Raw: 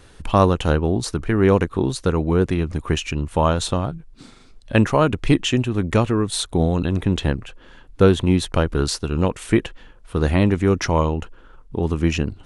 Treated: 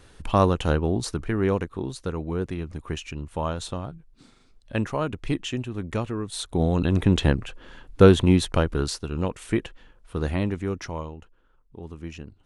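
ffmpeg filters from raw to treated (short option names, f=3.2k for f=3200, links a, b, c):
-af "volume=6.5dB,afade=t=out:st=1.05:d=0.64:silence=0.501187,afade=t=in:st=6.32:d=0.7:silence=0.298538,afade=t=out:st=8.14:d=0.83:silence=0.421697,afade=t=out:st=10.17:d=1:silence=0.298538"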